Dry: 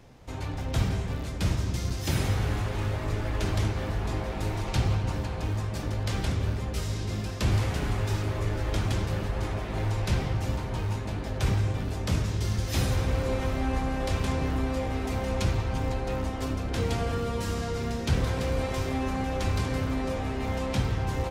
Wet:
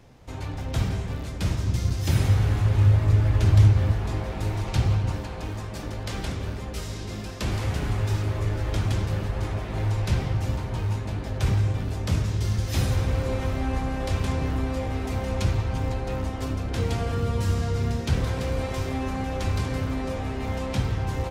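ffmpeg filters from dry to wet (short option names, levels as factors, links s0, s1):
-af "asetnsamples=n=441:p=0,asendcmd='1.65 equalizer g 8;2.65 equalizer g 14;3.93 equalizer g 4.5;5.16 equalizer g -4.5;7.63 equalizer g 4;17.17 equalizer g 10.5;18.01 equalizer g 2.5',equalizer=f=97:t=o:w=1.2:g=1.5"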